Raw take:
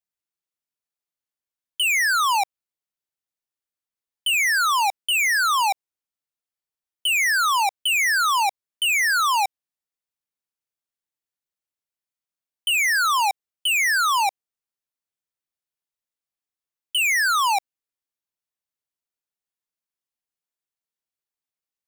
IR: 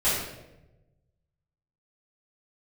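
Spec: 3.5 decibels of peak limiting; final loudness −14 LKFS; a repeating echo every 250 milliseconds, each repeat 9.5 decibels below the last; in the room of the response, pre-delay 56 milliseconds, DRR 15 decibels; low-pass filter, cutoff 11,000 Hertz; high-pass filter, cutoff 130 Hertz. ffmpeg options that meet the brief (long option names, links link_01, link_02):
-filter_complex "[0:a]highpass=130,lowpass=11000,alimiter=limit=-19.5dB:level=0:latency=1,aecho=1:1:250|500|750|1000:0.335|0.111|0.0365|0.012,asplit=2[link_01][link_02];[1:a]atrim=start_sample=2205,adelay=56[link_03];[link_02][link_03]afir=irnorm=-1:irlink=0,volume=-28.5dB[link_04];[link_01][link_04]amix=inputs=2:normalize=0,volume=8dB"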